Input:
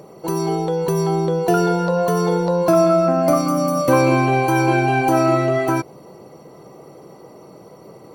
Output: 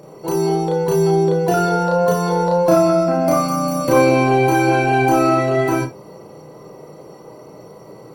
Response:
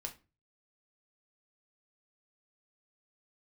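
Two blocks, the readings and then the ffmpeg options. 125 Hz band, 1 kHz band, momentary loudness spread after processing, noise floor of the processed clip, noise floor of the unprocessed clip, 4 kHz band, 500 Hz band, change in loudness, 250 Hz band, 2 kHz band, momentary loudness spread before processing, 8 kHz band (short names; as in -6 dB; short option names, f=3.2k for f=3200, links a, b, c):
+0.5 dB, +2.0 dB, 6 LU, -41 dBFS, -44 dBFS, +1.5 dB, +2.0 dB, +1.5 dB, +0.5 dB, +1.5 dB, 6 LU, +2.0 dB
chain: -filter_complex "[0:a]asplit=2[a][b];[1:a]atrim=start_sample=2205,atrim=end_sample=3528,adelay=33[c];[b][c]afir=irnorm=-1:irlink=0,volume=4.5dB[d];[a][d]amix=inputs=2:normalize=0,volume=-2dB"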